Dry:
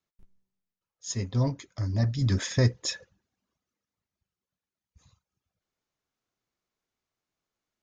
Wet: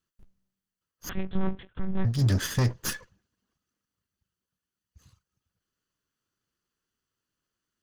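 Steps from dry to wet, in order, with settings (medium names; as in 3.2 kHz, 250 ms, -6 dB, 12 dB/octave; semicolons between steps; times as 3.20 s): comb filter that takes the minimum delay 0.65 ms; peak limiter -19.5 dBFS, peak gain reduction 6 dB; 1.09–2.05 s: monotone LPC vocoder at 8 kHz 190 Hz; trim +3.5 dB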